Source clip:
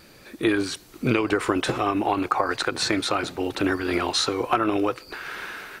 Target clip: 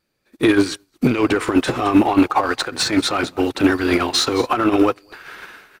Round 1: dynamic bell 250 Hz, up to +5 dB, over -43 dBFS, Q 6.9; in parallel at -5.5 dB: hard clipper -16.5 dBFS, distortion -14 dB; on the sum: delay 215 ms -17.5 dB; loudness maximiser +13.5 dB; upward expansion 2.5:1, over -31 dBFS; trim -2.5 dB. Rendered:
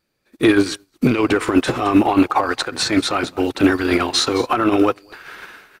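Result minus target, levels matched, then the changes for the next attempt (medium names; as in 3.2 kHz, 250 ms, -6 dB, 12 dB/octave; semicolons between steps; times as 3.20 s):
hard clipper: distortion -8 dB
change: hard clipper -25.5 dBFS, distortion -6 dB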